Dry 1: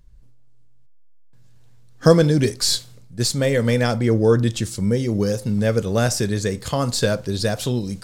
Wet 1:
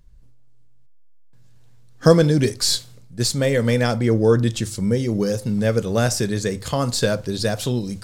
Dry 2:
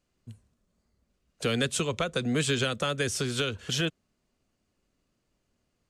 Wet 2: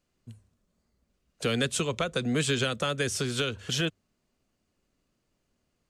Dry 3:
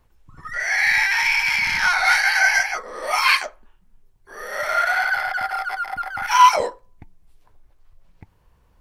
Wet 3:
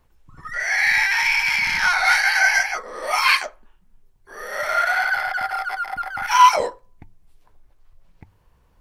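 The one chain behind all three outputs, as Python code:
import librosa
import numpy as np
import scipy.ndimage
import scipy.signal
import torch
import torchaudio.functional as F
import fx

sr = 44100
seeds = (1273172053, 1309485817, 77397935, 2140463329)

y = fx.hum_notches(x, sr, base_hz=50, count=2)
y = fx.quant_float(y, sr, bits=8)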